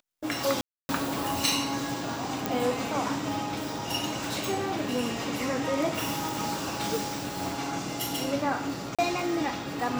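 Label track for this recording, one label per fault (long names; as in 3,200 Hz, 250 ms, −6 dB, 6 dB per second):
0.610000	0.890000	drop-out 280 ms
2.460000	2.460000	click
8.950000	8.990000	drop-out 36 ms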